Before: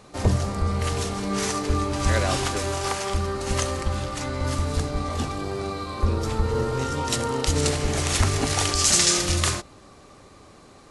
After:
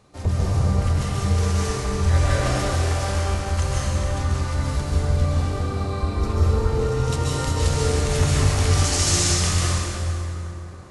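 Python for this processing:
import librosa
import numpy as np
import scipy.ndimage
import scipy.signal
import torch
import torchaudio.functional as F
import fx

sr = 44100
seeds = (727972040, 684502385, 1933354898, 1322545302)

y = fx.peak_eq(x, sr, hz=79.0, db=8.5, octaves=1.4)
y = fx.rev_plate(y, sr, seeds[0], rt60_s=3.4, hf_ratio=0.6, predelay_ms=120, drr_db=-7.5)
y = y * librosa.db_to_amplitude(-8.5)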